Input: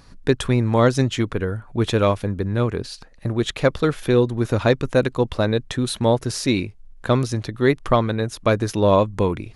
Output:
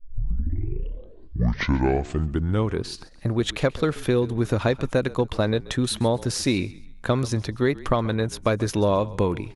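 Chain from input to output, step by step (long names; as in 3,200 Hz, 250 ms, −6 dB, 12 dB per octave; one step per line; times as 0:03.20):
turntable start at the beginning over 2.87 s
downward compressor, threshold −17 dBFS, peak gain reduction 6.5 dB
on a send: echo with shifted repeats 133 ms, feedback 35%, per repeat −38 Hz, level −19.5 dB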